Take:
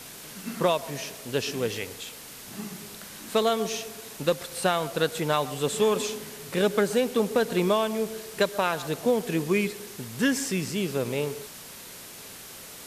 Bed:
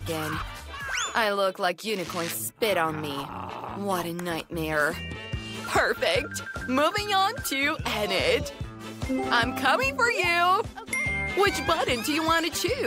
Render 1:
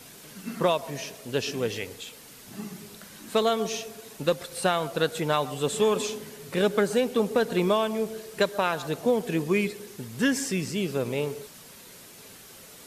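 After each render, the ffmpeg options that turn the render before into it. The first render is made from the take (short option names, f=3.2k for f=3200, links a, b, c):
-af "afftdn=nr=6:nf=-44"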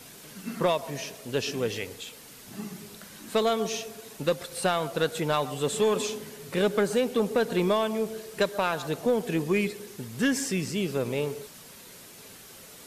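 -af "asoftclip=type=tanh:threshold=-14dB"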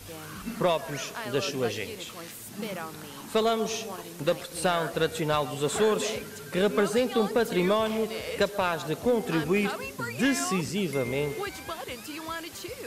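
-filter_complex "[1:a]volume=-12.5dB[a];[0:a][a]amix=inputs=2:normalize=0"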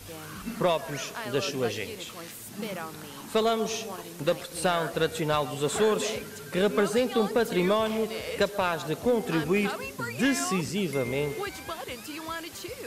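-af anull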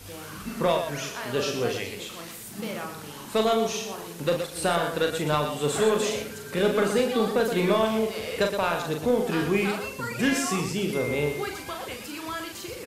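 -af "aecho=1:1:40.82|119.5:0.562|0.398"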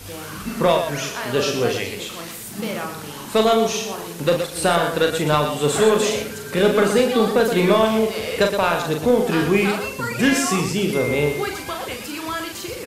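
-af "volume=6.5dB"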